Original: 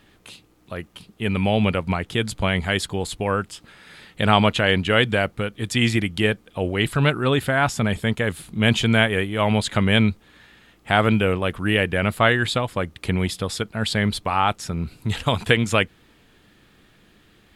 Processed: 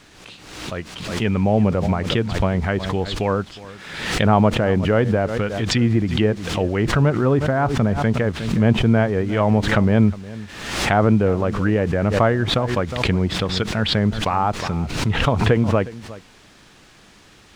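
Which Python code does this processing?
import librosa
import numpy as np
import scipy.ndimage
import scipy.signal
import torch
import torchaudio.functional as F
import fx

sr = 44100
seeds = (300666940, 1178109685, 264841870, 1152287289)

y = fx.env_lowpass_down(x, sr, base_hz=970.0, full_db=-17.0)
y = fx.quant_dither(y, sr, seeds[0], bits=8, dither='triangular')
y = fx.air_absorb(y, sr, metres=100.0)
y = y + 10.0 ** (-18.0 / 20.0) * np.pad(y, (int(361 * sr / 1000.0), 0))[:len(y)]
y = fx.pre_swell(y, sr, db_per_s=55.0)
y = y * 10.0 ** (3.0 / 20.0)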